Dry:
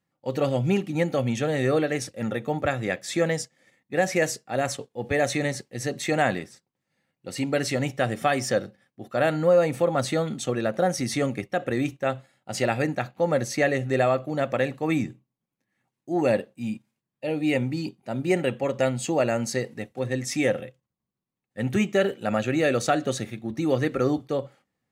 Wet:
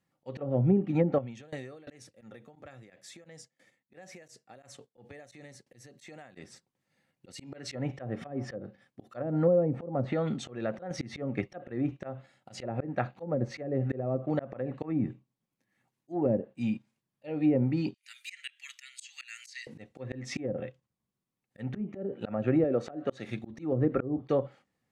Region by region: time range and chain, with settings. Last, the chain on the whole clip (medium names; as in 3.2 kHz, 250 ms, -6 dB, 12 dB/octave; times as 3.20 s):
1.18–6.37 s: high-pass 55 Hz + compression 12:1, threshold -30 dBFS + sawtooth tremolo in dB decaying 2.9 Hz, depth 22 dB
7.32–7.72 s: de-hum 349.4 Hz, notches 15 + compression 3:1, threshold -31 dBFS + three bands expanded up and down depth 100%
10.01–10.91 s: treble shelf 3.7 kHz -10 dB + compression 3:1, threshold -26 dBFS
17.94–19.67 s: steep high-pass 1.9 kHz + treble shelf 4.9 kHz +4 dB
22.64–23.28 s: high-pass 280 Hz 6 dB/octave + treble shelf 10 kHz +8.5 dB
whole clip: low-pass that closes with the level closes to 390 Hz, closed at -18 dBFS; slow attack 229 ms